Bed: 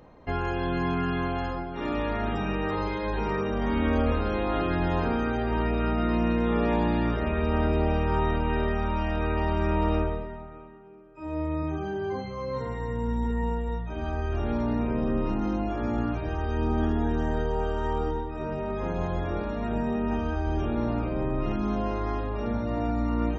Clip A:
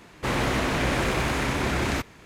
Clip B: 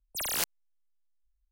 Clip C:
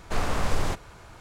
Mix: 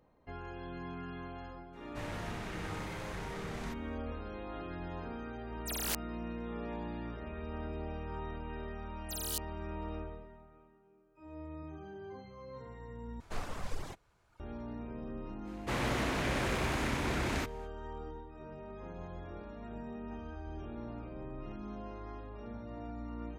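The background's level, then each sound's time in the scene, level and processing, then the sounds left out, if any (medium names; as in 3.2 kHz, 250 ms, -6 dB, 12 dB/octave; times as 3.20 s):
bed -16 dB
1.72 s: add A -17.5 dB, fades 0.02 s + frequency shift -230 Hz
5.51 s: add B -6 dB
8.94 s: add B -6 dB + rippled Chebyshev high-pass 2.9 kHz, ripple 3 dB
13.20 s: replace with C -11.5 dB + reverb removal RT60 1.5 s
15.44 s: add A -8.5 dB, fades 0.05 s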